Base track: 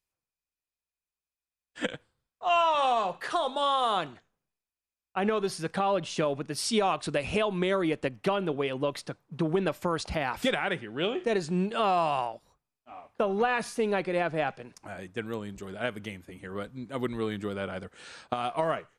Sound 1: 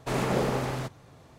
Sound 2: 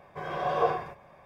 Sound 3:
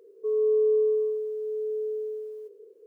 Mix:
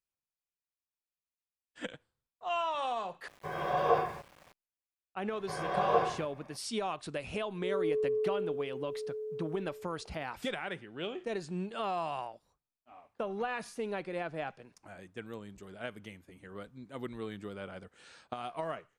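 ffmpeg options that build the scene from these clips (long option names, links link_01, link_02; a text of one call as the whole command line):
ffmpeg -i bed.wav -i cue0.wav -i cue1.wav -i cue2.wav -filter_complex "[2:a]asplit=2[link_01][link_02];[0:a]volume=-9dB[link_03];[link_01]aeval=exprs='val(0)*gte(abs(val(0)),0.00316)':channel_layout=same[link_04];[link_03]asplit=2[link_05][link_06];[link_05]atrim=end=3.284[link_07];[link_04]atrim=end=1.25,asetpts=PTS-STARTPTS,volume=-1.5dB[link_08];[link_06]atrim=start=4.526[link_09];[link_02]atrim=end=1.25,asetpts=PTS-STARTPTS,volume=-2dB,afade=type=in:duration=0.004:curve=hsin,afade=type=out:start_time=1.246:duration=0.004:curve=hsin,adelay=5320[link_10];[3:a]atrim=end=2.86,asetpts=PTS-STARTPTS,volume=-9dB,afade=type=in:duration=0.004:curve=hsin,afade=type=out:start_time=2.856:duration=0.004:curve=hsin,adelay=7390[link_11];[link_07][link_08]acrossfade=duration=0.004:curve1=hsin:curve2=hsin[link_12];[link_12][link_09]acrossfade=duration=0.004:curve1=hsin:curve2=hsin[link_13];[link_13][link_10][link_11]amix=inputs=3:normalize=0" out.wav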